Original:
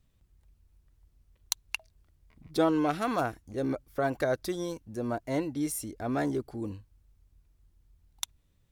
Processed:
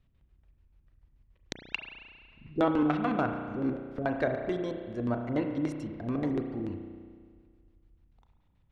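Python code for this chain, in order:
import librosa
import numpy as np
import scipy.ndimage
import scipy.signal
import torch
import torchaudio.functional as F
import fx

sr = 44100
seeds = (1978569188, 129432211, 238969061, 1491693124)

y = fx.filter_lfo_lowpass(x, sr, shape='square', hz=6.9, low_hz=290.0, high_hz=2900.0, q=1.0)
y = fx.rev_spring(y, sr, rt60_s=1.9, pass_ms=(33,), chirp_ms=55, drr_db=4.5)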